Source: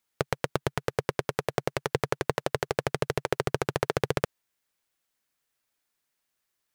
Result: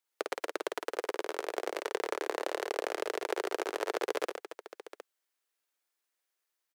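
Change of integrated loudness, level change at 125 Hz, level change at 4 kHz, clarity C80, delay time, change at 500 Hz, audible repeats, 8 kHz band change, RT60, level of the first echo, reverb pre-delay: -5.0 dB, under -40 dB, -4.5 dB, no reverb, 52 ms, -4.5 dB, 4, -4.5 dB, no reverb, -4.5 dB, no reverb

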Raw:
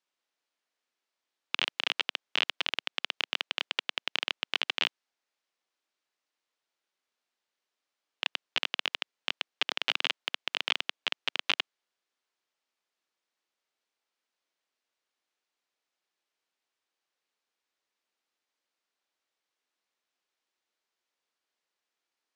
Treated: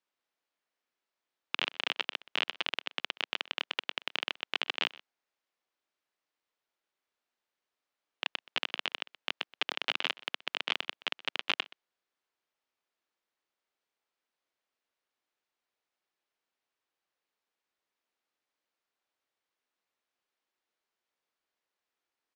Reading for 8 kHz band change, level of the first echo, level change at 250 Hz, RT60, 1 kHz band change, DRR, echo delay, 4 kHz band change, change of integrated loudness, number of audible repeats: -6.0 dB, -20.5 dB, 0.0 dB, no reverb, -0.5 dB, no reverb, 125 ms, -3.5 dB, -3.0 dB, 1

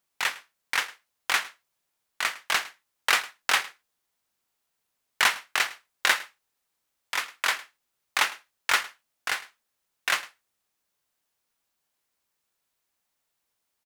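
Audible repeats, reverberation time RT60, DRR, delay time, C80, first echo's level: 1, no reverb, no reverb, 107 ms, no reverb, -19.5 dB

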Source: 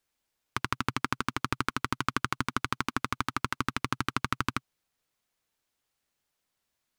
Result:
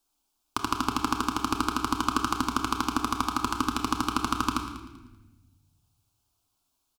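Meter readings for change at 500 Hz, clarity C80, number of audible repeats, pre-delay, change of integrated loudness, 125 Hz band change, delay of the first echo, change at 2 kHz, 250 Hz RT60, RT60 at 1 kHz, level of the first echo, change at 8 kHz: +3.5 dB, 8.0 dB, 2, 7 ms, +4.0 dB, -2.0 dB, 194 ms, -2.5 dB, 1.8 s, 1.1 s, -15.5 dB, +6.5 dB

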